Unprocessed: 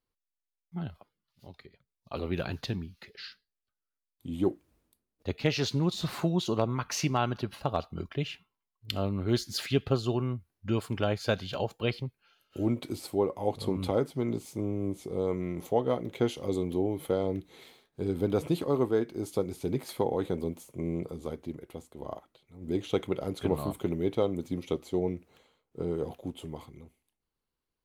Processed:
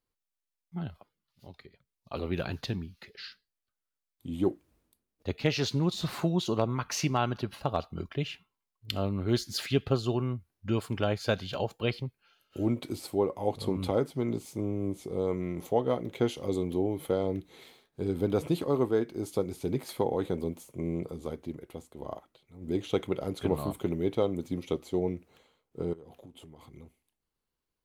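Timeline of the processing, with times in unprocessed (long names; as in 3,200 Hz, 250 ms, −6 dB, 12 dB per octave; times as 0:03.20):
0:25.93–0:26.74: downward compressor, threshold −47 dBFS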